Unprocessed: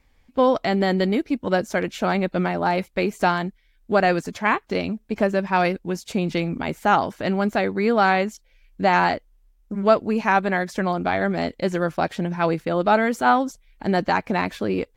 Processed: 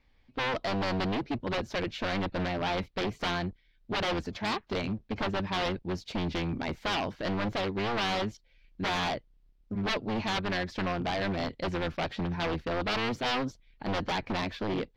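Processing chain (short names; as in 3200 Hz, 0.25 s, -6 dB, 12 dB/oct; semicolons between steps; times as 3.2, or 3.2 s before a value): octaver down 1 oct, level -5 dB; wavefolder -19 dBFS; resonant high shelf 6200 Hz -13 dB, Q 1.5; gain -6 dB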